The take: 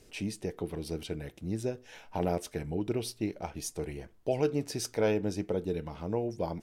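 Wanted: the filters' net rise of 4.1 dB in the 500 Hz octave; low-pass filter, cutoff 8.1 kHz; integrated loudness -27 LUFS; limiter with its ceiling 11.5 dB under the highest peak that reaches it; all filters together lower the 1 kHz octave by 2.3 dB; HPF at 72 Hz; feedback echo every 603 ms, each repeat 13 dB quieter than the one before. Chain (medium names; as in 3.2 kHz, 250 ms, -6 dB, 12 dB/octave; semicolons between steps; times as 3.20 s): high-pass 72 Hz; low-pass 8.1 kHz; peaking EQ 500 Hz +6.5 dB; peaking EQ 1 kHz -7.5 dB; peak limiter -23.5 dBFS; feedback delay 603 ms, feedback 22%, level -13 dB; trim +8.5 dB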